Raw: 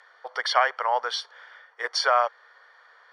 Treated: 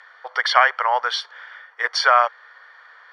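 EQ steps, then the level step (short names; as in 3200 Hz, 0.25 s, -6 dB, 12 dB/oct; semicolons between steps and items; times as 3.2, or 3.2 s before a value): bell 1900 Hz +11 dB 2.9 oct; -2.5 dB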